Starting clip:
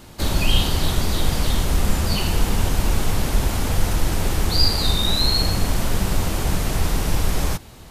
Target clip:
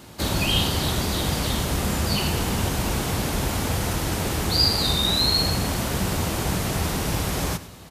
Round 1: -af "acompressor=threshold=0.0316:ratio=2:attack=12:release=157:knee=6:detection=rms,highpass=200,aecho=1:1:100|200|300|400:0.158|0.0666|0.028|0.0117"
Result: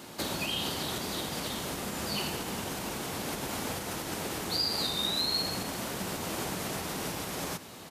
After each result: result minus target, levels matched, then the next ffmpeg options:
compression: peak gain reduction +11.5 dB; 125 Hz band -7.5 dB
-af "highpass=200,aecho=1:1:100|200|300|400:0.158|0.0666|0.028|0.0117"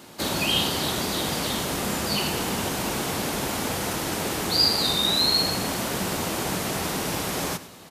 125 Hz band -7.5 dB
-af "highpass=78,aecho=1:1:100|200|300|400:0.158|0.0666|0.028|0.0117"

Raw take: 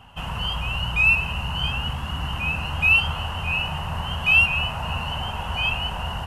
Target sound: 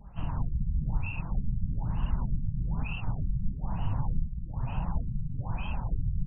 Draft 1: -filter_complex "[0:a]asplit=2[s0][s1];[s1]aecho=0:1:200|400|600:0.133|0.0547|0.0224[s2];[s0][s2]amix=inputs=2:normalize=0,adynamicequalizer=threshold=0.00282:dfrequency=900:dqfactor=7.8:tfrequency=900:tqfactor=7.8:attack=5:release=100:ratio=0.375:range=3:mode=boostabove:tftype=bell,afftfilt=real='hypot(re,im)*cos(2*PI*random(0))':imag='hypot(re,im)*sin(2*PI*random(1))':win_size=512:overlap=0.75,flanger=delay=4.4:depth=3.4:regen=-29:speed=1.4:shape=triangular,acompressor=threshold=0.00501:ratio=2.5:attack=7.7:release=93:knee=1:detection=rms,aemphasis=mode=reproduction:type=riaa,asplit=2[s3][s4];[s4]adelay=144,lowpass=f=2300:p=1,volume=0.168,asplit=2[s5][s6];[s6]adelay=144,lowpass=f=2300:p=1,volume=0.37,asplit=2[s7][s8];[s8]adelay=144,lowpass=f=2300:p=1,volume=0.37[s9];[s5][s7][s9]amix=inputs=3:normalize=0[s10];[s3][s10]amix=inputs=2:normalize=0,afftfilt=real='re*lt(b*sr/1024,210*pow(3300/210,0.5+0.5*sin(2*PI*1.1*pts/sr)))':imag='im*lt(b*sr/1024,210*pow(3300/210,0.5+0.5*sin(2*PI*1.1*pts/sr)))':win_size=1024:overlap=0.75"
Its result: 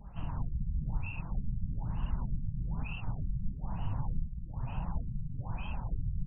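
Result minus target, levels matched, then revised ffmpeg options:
compression: peak gain reduction +4.5 dB
-filter_complex "[0:a]asplit=2[s0][s1];[s1]aecho=0:1:200|400|600:0.133|0.0547|0.0224[s2];[s0][s2]amix=inputs=2:normalize=0,adynamicequalizer=threshold=0.00282:dfrequency=900:dqfactor=7.8:tfrequency=900:tqfactor=7.8:attack=5:release=100:ratio=0.375:range=3:mode=boostabove:tftype=bell,afftfilt=real='hypot(re,im)*cos(2*PI*random(0))':imag='hypot(re,im)*sin(2*PI*random(1))':win_size=512:overlap=0.75,flanger=delay=4.4:depth=3.4:regen=-29:speed=1.4:shape=triangular,acompressor=threshold=0.0119:ratio=2.5:attack=7.7:release=93:knee=1:detection=rms,aemphasis=mode=reproduction:type=riaa,asplit=2[s3][s4];[s4]adelay=144,lowpass=f=2300:p=1,volume=0.168,asplit=2[s5][s6];[s6]adelay=144,lowpass=f=2300:p=1,volume=0.37,asplit=2[s7][s8];[s8]adelay=144,lowpass=f=2300:p=1,volume=0.37[s9];[s5][s7][s9]amix=inputs=3:normalize=0[s10];[s3][s10]amix=inputs=2:normalize=0,afftfilt=real='re*lt(b*sr/1024,210*pow(3300/210,0.5+0.5*sin(2*PI*1.1*pts/sr)))':imag='im*lt(b*sr/1024,210*pow(3300/210,0.5+0.5*sin(2*PI*1.1*pts/sr)))':win_size=1024:overlap=0.75"

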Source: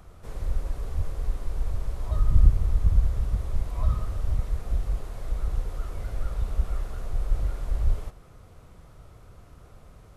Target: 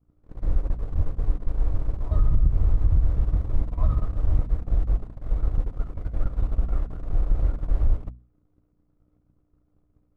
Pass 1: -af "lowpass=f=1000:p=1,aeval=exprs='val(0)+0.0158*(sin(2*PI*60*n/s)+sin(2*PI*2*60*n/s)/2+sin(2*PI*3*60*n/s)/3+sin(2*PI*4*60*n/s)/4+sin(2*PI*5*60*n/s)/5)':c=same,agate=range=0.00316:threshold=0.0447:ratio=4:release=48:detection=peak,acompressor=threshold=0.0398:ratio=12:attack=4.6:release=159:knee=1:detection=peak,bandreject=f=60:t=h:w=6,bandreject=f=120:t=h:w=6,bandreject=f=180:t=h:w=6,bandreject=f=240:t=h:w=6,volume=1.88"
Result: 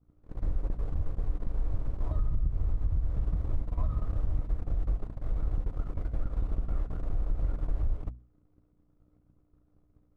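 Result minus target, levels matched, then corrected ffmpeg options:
compression: peak gain reduction +9 dB
-af "lowpass=f=1000:p=1,aeval=exprs='val(0)+0.0158*(sin(2*PI*60*n/s)+sin(2*PI*2*60*n/s)/2+sin(2*PI*3*60*n/s)/3+sin(2*PI*4*60*n/s)/4+sin(2*PI*5*60*n/s)/5)':c=same,agate=range=0.00316:threshold=0.0447:ratio=4:release=48:detection=peak,acompressor=threshold=0.126:ratio=12:attack=4.6:release=159:knee=1:detection=peak,bandreject=f=60:t=h:w=6,bandreject=f=120:t=h:w=6,bandreject=f=180:t=h:w=6,bandreject=f=240:t=h:w=6,volume=1.88"

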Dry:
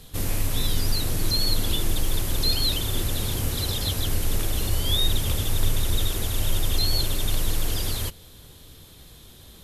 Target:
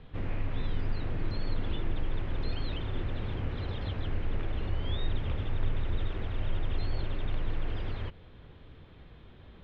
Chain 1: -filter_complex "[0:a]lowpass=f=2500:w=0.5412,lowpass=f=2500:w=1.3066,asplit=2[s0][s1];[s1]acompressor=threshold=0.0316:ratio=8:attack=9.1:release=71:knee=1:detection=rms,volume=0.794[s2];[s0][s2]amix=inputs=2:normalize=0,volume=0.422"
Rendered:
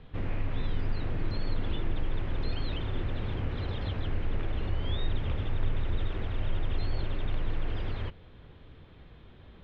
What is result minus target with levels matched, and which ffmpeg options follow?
compression: peak gain reduction -7 dB
-filter_complex "[0:a]lowpass=f=2500:w=0.5412,lowpass=f=2500:w=1.3066,asplit=2[s0][s1];[s1]acompressor=threshold=0.0126:ratio=8:attack=9.1:release=71:knee=1:detection=rms,volume=0.794[s2];[s0][s2]amix=inputs=2:normalize=0,volume=0.422"

